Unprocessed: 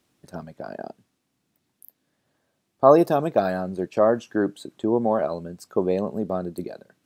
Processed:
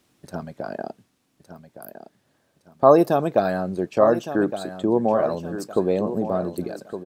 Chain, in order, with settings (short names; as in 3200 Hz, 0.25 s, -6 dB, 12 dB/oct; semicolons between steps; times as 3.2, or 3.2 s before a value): in parallel at -2.5 dB: compressor, threshold -32 dBFS, peak gain reduction 21 dB; on the sum: feedback echo 1.163 s, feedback 32%, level -11 dB